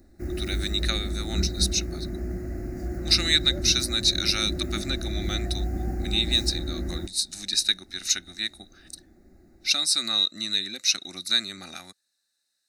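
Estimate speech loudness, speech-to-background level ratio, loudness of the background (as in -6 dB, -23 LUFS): -24.5 LUFS, 7.5 dB, -32.0 LUFS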